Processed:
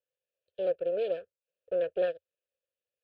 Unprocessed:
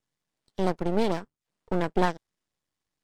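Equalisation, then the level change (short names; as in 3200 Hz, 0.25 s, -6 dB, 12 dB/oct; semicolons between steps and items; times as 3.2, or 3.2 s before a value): vowel filter e; bell 85 Hz +12 dB 0.61 oct; fixed phaser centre 1300 Hz, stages 8; +7.0 dB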